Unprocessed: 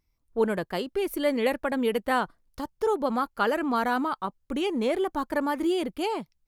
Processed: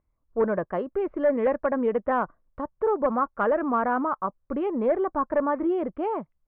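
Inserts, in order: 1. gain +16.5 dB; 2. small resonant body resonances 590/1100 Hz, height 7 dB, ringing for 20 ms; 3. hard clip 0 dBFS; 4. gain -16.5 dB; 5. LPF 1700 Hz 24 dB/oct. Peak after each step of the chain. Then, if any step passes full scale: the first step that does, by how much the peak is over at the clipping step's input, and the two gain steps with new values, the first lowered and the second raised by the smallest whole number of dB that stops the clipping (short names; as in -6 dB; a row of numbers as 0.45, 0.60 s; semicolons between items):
+4.5, +8.5, 0.0, -16.5, -15.0 dBFS; step 1, 8.5 dB; step 1 +7.5 dB, step 4 -7.5 dB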